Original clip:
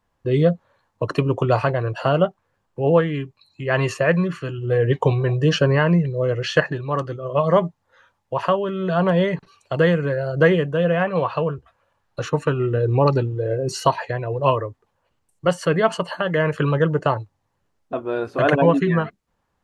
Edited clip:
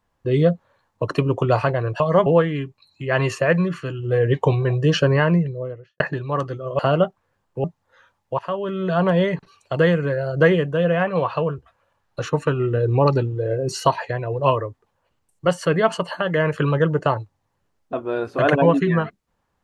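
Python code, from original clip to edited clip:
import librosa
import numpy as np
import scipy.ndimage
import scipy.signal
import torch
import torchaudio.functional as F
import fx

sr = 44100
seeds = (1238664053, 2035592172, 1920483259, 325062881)

y = fx.studio_fade_out(x, sr, start_s=5.8, length_s=0.79)
y = fx.edit(y, sr, fx.swap(start_s=2.0, length_s=0.85, other_s=7.38, other_length_s=0.26),
    fx.fade_in_from(start_s=8.39, length_s=0.33, floor_db=-18.0), tone=tone)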